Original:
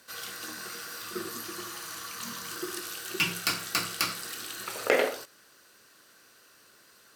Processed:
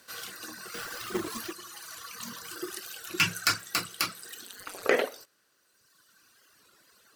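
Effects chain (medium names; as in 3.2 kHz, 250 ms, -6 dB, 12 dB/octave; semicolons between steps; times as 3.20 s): 0.74–1.53 s: square wave that keeps the level; reverb removal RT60 1.8 s; 3.18–3.61 s: fifteen-band graphic EQ 100 Hz +10 dB, 1.6 kHz +8 dB, 6.3 kHz +6 dB; 4.44–4.84 s: ring modulator 92 Hz; warped record 33 1/3 rpm, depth 100 cents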